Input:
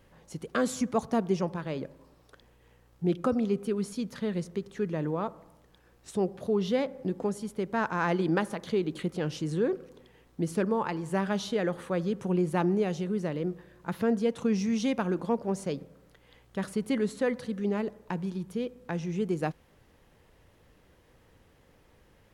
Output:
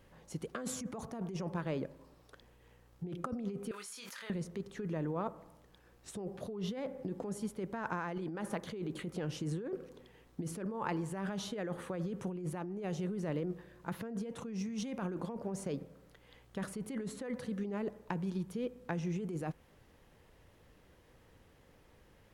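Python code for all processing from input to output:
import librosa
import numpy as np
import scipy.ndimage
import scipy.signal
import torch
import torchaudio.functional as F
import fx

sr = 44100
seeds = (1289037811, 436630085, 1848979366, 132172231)

y = fx.chain(x, sr, fx.highpass(hz=1400.0, slope=12),
    fx.doubler(ms=26.0, db=-7.5),
    fx.env_flatten(amount_pct=100), at=(3.71, 4.3))
y = fx.dynamic_eq(y, sr, hz=4300.0, q=1.2, threshold_db=-53.0, ratio=4.0, max_db=-5)
y = fx.over_compress(y, sr, threshold_db=-32.0, ratio=-1.0)
y = F.gain(torch.from_numpy(y), -5.5).numpy()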